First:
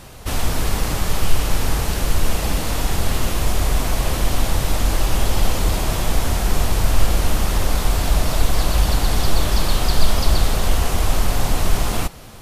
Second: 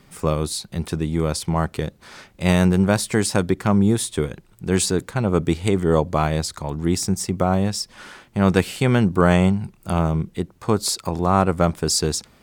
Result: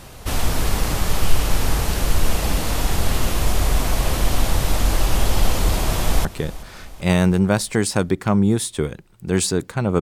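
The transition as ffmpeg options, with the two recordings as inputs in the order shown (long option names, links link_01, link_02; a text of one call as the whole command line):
ffmpeg -i cue0.wav -i cue1.wav -filter_complex "[0:a]apad=whole_dur=10.01,atrim=end=10.01,atrim=end=6.252[link_01];[1:a]atrim=start=1.638:end=5.4[link_02];[link_01][link_02]acrossfade=duration=0.004:curve1=hsin:curve2=hsin,asplit=2[link_03][link_04];[link_04]afade=type=in:start_time=5.61:duration=0.01,afade=type=out:start_time=6.25:duration=0.01,aecho=0:1:380|760|1140|1520|1900:0.141254|0.0776896|0.0427293|0.0235011|0.0129256[link_05];[link_03][link_05]amix=inputs=2:normalize=0" out.wav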